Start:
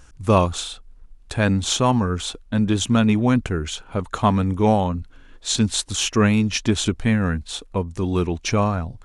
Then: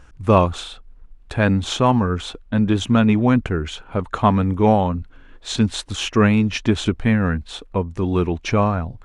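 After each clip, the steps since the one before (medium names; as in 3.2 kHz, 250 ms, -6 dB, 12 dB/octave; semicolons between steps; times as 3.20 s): tone controls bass -1 dB, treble -12 dB; trim +2.5 dB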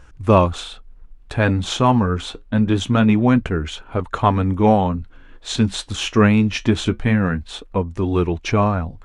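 flange 0.24 Hz, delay 1.9 ms, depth 7.8 ms, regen -69%; trim +5 dB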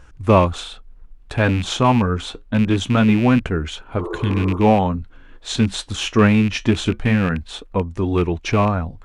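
rattle on loud lows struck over -18 dBFS, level -19 dBFS; spectral replace 4.01–4.55 s, 330–1400 Hz after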